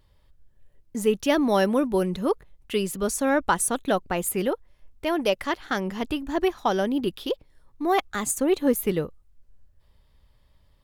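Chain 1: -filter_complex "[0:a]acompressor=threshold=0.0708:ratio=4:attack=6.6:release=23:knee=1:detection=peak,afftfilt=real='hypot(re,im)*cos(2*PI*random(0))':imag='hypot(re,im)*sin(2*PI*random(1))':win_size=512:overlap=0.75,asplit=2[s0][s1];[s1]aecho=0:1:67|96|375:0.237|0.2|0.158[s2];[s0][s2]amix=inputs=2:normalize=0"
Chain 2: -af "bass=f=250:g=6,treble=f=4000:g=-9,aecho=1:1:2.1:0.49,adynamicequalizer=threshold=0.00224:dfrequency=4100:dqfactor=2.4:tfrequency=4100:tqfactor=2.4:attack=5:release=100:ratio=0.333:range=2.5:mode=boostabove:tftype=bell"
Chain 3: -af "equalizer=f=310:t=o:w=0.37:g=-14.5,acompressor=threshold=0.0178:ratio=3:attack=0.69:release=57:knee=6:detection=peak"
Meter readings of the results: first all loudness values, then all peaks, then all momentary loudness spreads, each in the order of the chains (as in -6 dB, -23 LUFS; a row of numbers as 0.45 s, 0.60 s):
-33.0 LUFS, -24.5 LUFS, -37.5 LUFS; -17.5 dBFS, -8.0 dBFS, -25.0 dBFS; 8 LU, 8 LU, 6 LU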